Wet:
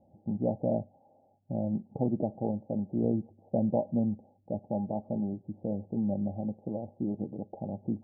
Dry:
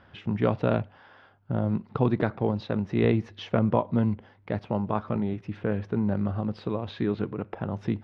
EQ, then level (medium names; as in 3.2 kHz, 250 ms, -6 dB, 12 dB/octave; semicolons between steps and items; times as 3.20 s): rippled Chebyshev low-pass 840 Hz, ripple 6 dB; bass shelf 150 Hz -8.5 dB; band-stop 420 Hz, Q 12; 0.0 dB